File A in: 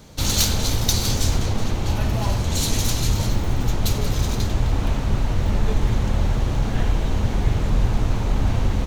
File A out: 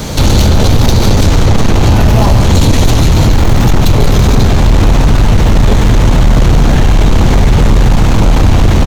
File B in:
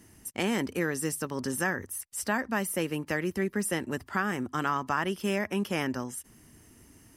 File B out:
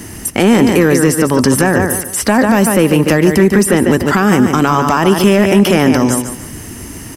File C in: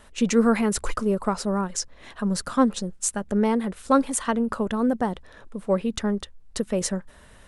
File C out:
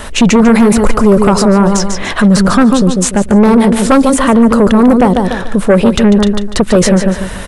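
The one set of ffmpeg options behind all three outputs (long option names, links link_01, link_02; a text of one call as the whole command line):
ffmpeg -i in.wav -filter_complex "[0:a]acrossover=split=930|3400[link_01][link_02][link_03];[link_01]acompressor=threshold=-19dB:ratio=4[link_04];[link_02]acompressor=threshold=-41dB:ratio=4[link_05];[link_03]acompressor=threshold=-45dB:ratio=4[link_06];[link_04][link_05][link_06]amix=inputs=3:normalize=0,aecho=1:1:146|292|438:0.355|0.106|0.0319,aeval=exprs='0.282*sin(PI/2*2.24*val(0)/0.282)':channel_layout=same,alimiter=level_in=16.5dB:limit=-1dB:release=50:level=0:latency=1,volume=-1dB" out.wav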